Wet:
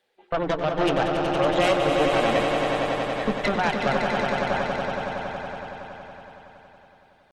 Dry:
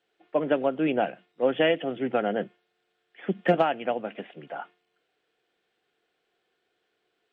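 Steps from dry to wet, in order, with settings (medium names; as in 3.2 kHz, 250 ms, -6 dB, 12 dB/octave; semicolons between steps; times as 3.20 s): dynamic bell 150 Hz, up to +7 dB, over -41 dBFS, Q 4.1; thinning echo 171 ms, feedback 73%, high-pass 190 Hz, level -19 dB; reverb removal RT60 1.8 s; compression 20:1, threshold -22 dBFS, peak gain reduction 8.5 dB; peak limiter -20.5 dBFS, peak gain reduction 7 dB; pitch shift +2 st; Chebyshev shaper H 4 -8 dB, 5 -26 dB, 6 -24 dB, 7 -40 dB, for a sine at -20 dBFS; hum notches 60/120/180/240/300/360/420 Hz; echo with a slow build-up 93 ms, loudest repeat 5, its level -7 dB; trim +4.5 dB; Opus 24 kbps 48 kHz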